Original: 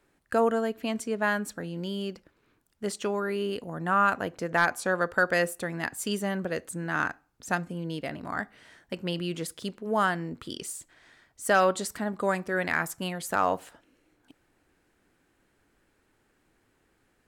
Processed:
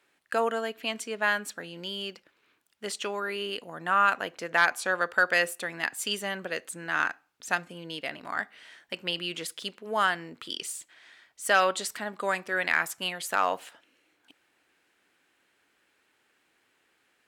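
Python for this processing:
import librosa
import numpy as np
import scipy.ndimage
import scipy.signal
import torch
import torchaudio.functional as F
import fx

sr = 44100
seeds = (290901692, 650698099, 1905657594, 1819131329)

y = fx.highpass(x, sr, hz=600.0, slope=6)
y = fx.peak_eq(y, sr, hz=2900.0, db=7.0, octaves=1.4)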